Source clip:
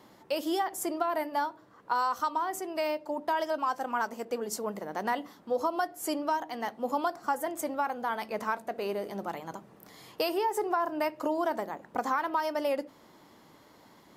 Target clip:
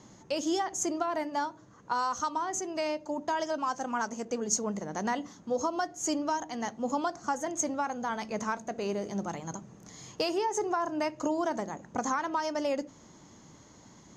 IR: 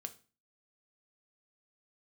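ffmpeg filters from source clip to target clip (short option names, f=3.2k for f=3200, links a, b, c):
-af "lowpass=f=6.5k:t=q:w=15,bass=f=250:g=12,treble=f=4k:g=-3,volume=-2dB"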